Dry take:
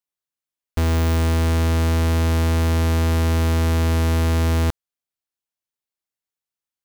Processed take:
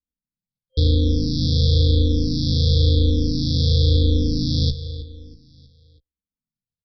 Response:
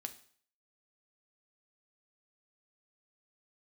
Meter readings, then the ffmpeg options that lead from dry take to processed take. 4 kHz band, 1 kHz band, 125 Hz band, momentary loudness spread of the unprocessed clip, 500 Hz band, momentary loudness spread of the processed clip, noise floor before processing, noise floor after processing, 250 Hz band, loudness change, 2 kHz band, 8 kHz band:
+8.0 dB, under -40 dB, +1.0 dB, 2 LU, -2.0 dB, 9 LU, under -85 dBFS, under -85 dBFS, +0.5 dB, +0.5 dB, under -40 dB, -9.5 dB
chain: -filter_complex "[0:a]aresample=11025,acrusher=samples=29:mix=1:aa=0.000001,aresample=44100,highshelf=f=2500:g=9.5,afftfilt=real='re*(1-between(b*sr/4096,520,3200))':imag='im*(1-between(b*sr/4096,520,3200))':win_size=4096:overlap=0.75,asplit=2[s0][s1];[s1]adelay=16,volume=0.316[s2];[s0][s2]amix=inputs=2:normalize=0,aecho=1:1:320|640|960|1280:0.178|0.0782|0.0344|0.0151,asplit=2[s3][s4];[s4]afreqshift=-0.97[s5];[s3][s5]amix=inputs=2:normalize=1,volume=1.58"

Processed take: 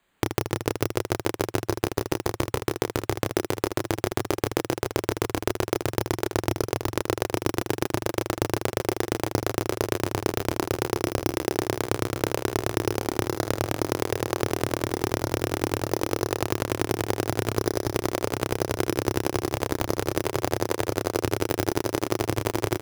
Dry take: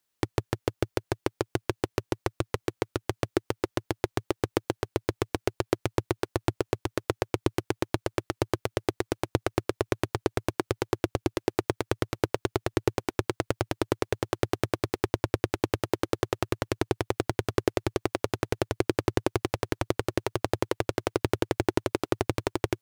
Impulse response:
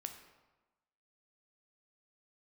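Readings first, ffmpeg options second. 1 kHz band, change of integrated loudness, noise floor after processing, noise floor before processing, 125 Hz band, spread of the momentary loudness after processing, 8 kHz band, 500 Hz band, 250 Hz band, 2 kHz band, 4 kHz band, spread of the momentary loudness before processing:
+3.5 dB, +3.0 dB, -56 dBFS, -80 dBFS, +2.5 dB, 1 LU, +8.0 dB, +2.5 dB, +2.5 dB, +3.0 dB, +4.0 dB, 3 LU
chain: -filter_complex "[0:a]acrusher=samples=8:mix=1:aa=0.000001,acrossover=split=1700|4600[s0][s1][s2];[s0]acompressor=threshold=0.0316:ratio=4[s3];[s1]acompressor=threshold=0.00447:ratio=4[s4];[s2]acompressor=threshold=0.00891:ratio=4[s5];[s3][s4][s5]amix=inputs=3:normalize=0,aecho=1:1:30|78|154.8|277.7|474.3:0.631|0.398|0.251|0.158|0.1,volume=2.37"

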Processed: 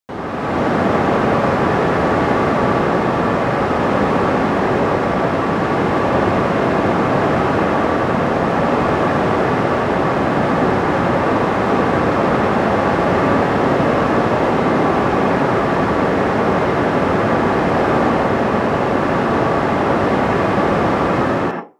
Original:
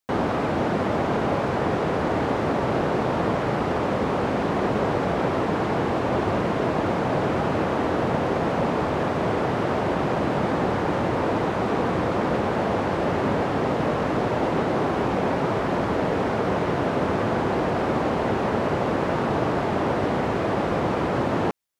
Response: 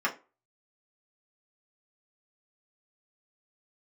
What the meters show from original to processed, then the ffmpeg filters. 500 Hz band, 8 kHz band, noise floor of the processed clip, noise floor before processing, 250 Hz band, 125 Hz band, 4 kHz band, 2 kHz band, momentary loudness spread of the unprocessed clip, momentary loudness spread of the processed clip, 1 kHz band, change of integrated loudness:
+7.0 dB, no reading, -18 dBFS, -25 dBFS, +7.5 dB, +6.5 dB, +6.5 dB, +9.5 dB, 1 LU, 2 LU, +8.5 dB, +8.0 dB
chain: -filter_complex "[0:a]dynaudnorm=f=100:g=9:m=3.76,asplit=2[s0][s1];[1:a]atrim=start_sample=2205,adelay=82[s2];[s1][s2]afir=irnorm=-1:irlink=0,volume=0.299[s3];[s0][s3]amix=inputs=2:normalize=0,volume=0.668"

